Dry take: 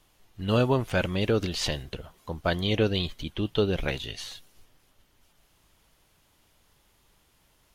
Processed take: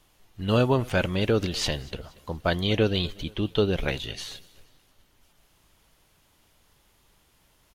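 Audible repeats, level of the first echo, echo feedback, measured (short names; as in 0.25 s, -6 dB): 2, -23.0 dB, 43%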